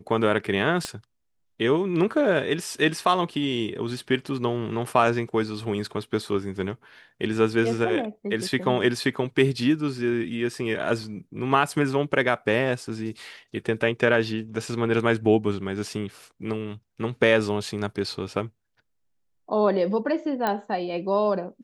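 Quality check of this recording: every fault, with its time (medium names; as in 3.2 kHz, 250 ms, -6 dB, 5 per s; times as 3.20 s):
0.85 s: pop -14 dBFS
20.47 s: pop -12 dBFS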